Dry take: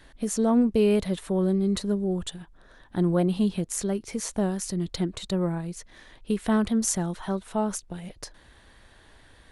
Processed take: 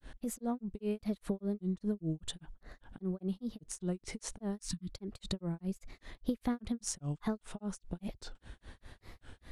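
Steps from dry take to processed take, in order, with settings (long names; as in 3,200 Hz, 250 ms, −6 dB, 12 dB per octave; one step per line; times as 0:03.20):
low-shelf EQ 300 Hz +7.5 dB
downward compressor 6 to 1, threshold −30 dBFS, peak gain reduction 16 dB
time-frequency box erased 0:04.60–0:04.93, 330–990 Hz
granular cloud 192 ms, grains 5 per second, spray 14 ms, pitch spread up and down by 3 semitones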